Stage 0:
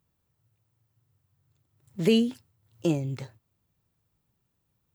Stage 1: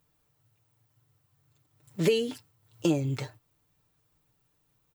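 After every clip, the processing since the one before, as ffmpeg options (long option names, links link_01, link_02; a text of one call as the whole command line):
ffmpeg -i in.wav -af "equalizer=frequency=160:width=1:gain=-7,aecho=1:1:6.7:0.64,acompressor=threshold=-25dB:ratio=6,volume=4.5dB" out.wav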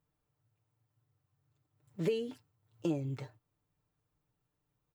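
ffmpeg -i in.wav -af "highshelf=frequency=2400:gain=-9.5,volume=-7.5dB" out.wav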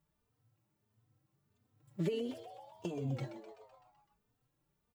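ffmpeg -i in.wav -filter_complex "[0:a]acompressor=threshold=-36dB:ratio=3,asplit=2[link_01][link_02];[link_02]asplit=7[link_03][link_04][link_05][link_06][link_07][link_08][link_09];[link_03]adelay=127,afreqshift=100,volume=-11dB[link_10];[link_04]adelay=254,afreqshift=200,volume=-15.3dB[link_11];[link_05]adelay=381,afreqshift=300,volume=-19.6dB[link_12];[link_06]adelay=508,afreqshift=400,volume=-23.9dB[link_13];[link_07]adelay=635,afreqshift=500,volume=-28.2dB[link_14];[link_08]adelay=762,afreqshift=600,volume=-32.5dB[link_15];[link_09]adelay=889,afreqshift=700,volume=-36.8dB[link_16];[link_10][link_11][link_12][link_13][link_14][link_15][link_16]amix=inputs=7:normalize=0[link_17];[link_01][link_17]amix=inputs=2:normalize=0,asplit=2[link_18][link_19];[link_19]adelay=3.1,afreqshift=1.5[link_20];[link_18][link_20]amix=inputs=2:normalize=1,volume=4.5dB" out.wav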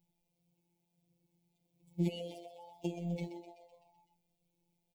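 ffmpeg -i in.wav -af "afftfilt=real='hypot(re,im)*cos(PI*b)':imag='0':win_size=1024:overlap=0.75,asuperstop=centerf=1400:order=12:qfactor=1.2,volume=4dB" out.wav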